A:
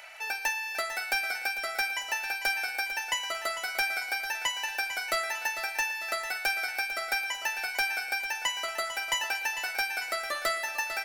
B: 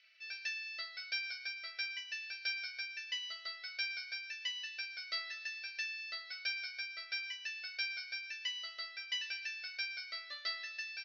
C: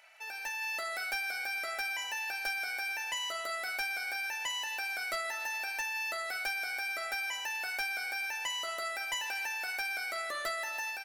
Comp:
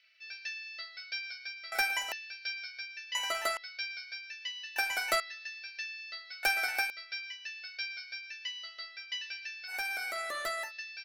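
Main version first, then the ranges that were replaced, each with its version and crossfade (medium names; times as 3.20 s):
B
1.72–2.12 s: from A
3.15–3.57 s: from A
4.76–5.20 s: from A
6.43–6.90 s: from A
9.71–10.67 s: from C, crossfade 0.10 s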